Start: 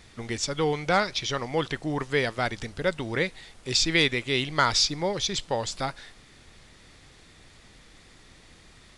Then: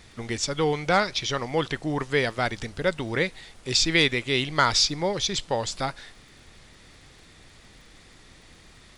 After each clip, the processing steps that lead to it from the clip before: crackle 30/s -50 dBFS; gain +1.5 dB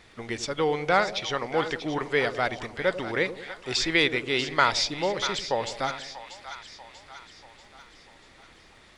tone controls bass -8 dB, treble -8 dB; split-band echo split 720 Hz, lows 94 ms, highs 0.639 s, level -11 dB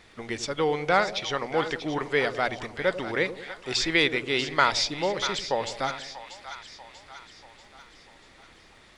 notches 60/120 Hz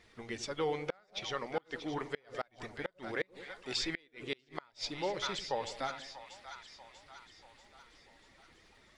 bin magnitudes rounded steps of 15 dB; flipped gate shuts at -14 dBFS, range -33 dB; gain -8 dB

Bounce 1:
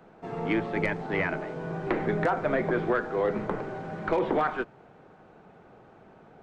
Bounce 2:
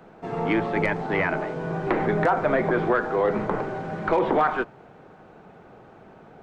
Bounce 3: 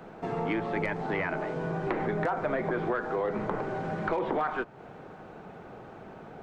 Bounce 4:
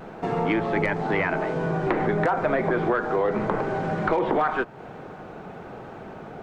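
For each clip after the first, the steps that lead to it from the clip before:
dynamic EQ 930 Hz, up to +4 dB, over -38 dBFS, Q 1.1; in parallel at -2.5 dB: limiter -22 dBFS, peak gain reduction 9.5 dB
compressor 2.5:1, threshold -34 dBFS, peak gain reduction 11.5 dB; gain +2.5 dB
vibrato 0.9 Hz 30 cents; gain +6.5 dB

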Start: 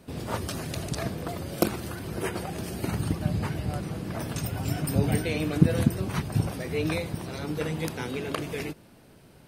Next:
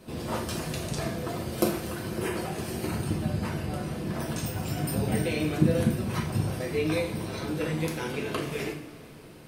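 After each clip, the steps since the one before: in parallel at +1.5 dB: compressor, threshold -37 dBFS, peak gain reduction 23 dB; on the sum: two-slope reverb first 0.49 s, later 3.7 s, from -19 dB, DRR -2 dB; gain -6.5 dB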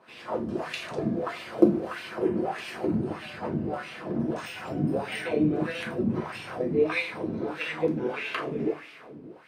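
AGC gain up to 4 dB; wah 1.6 Hz 230–2700 Hz, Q 2.3; gain +6 dB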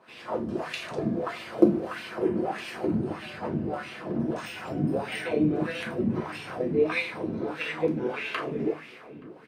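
outdoor echo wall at 150 m, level -24 dB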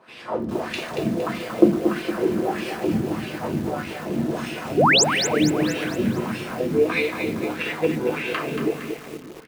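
painted sound rise, 4.77–5.04, 330–8200 Hz -20 dBFS; lo-fi delay 0.231 s, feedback 55%, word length 7-bit, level -6.5 dB; gain +4 dB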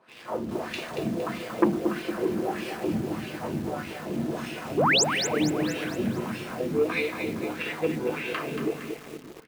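in parallel at -8.5 dB: requantised 6-bit, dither none; on the sum: core saturation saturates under 670 Hz; gain -7.5 dB

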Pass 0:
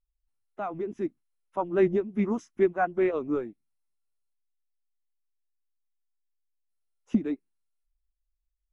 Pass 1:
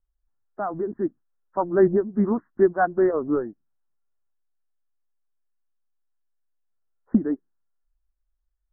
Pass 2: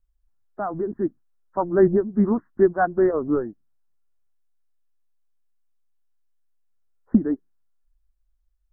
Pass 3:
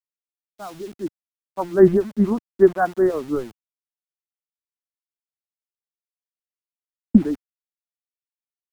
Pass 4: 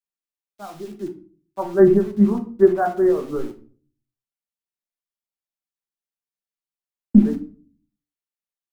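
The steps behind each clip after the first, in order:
steep low-pass 1800 Hz 96 dB/oct; gain +5 dB
low shelf 140 Hz +7.5 dB
sample gate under -35.5 dBFS; three-band expander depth 100%; gain -1 dB
reverb RT60 0.40 s, pre-delay 5 ms, DRR 3.5 dB; gain -3 dB

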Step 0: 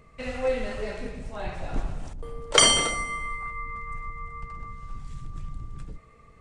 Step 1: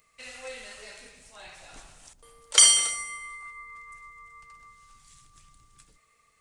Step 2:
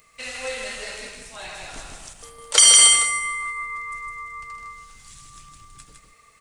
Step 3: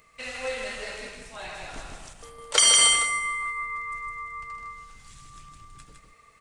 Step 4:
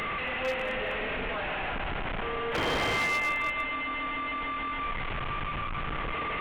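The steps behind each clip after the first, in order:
pre-emphasis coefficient 0.97; gain +5.5 dB
echo 0.158 s -4.5 dB; maximiser +10.5 dB; gain -1 dB
high shelf 3900 Hz -9 dB
delta modulation 16 kbps, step -26 dBFS; narrowing echo 0.199 s, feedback 43%, band-pass 500 Hz, level -7.5 dB; wavefolder -22.5 dBFS

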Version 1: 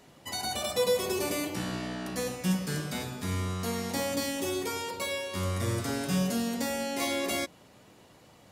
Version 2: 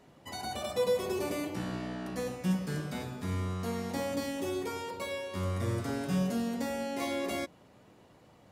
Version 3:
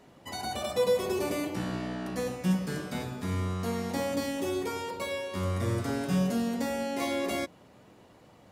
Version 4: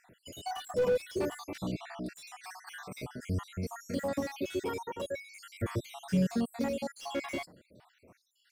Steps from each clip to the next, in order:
high shelf 2400 Hz -9 dB; gain -1.5 dB
notches 50/100/150 Hz; gain +3 dB
random spectral dropouts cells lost 66%; slew limiter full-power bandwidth 31 Hz

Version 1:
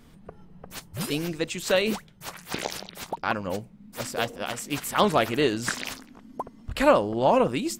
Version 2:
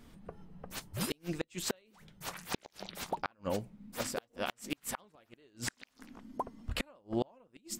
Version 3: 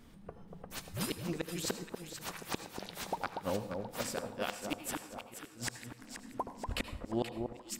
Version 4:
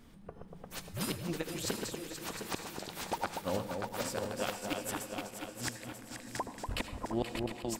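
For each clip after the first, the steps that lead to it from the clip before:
flange 1.1 Hz, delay 3 ms, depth 1.2 ms, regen -78%; flipped gate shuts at -20 dBFS, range -37 dB; gain +1 dB
echo with dull and thin repeats by turns 0.239 s, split 1200 Hz, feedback 64%, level -5 dB; on a send at -11.5 dB: reverb, pre-delay 72 ms; on the sum: gain -1 dB
regenerating reverse delay 0.354 s, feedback 58%, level -5 dB

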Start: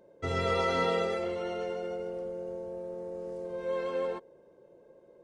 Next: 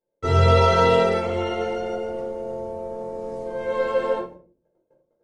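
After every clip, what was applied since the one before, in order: gate -52 dBFS, range -34 dB; shoebox room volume 280 m³, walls furnished, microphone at 4.2 m; gain +2.5 dB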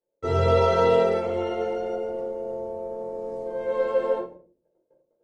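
bell 480 Hz +7.5 dB 2 oct; gain -8 dB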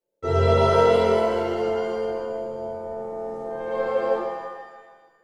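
shimmer reverb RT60 1.4 s, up +7 st, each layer -8 dB, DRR 3 dB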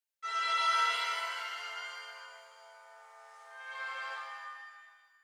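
HPF 1400 Hz 24 dB/oct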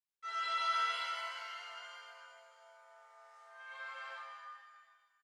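high shelf 11000 Hz -11 dB; doubler 24 ms -5 dB; gain -7 dB

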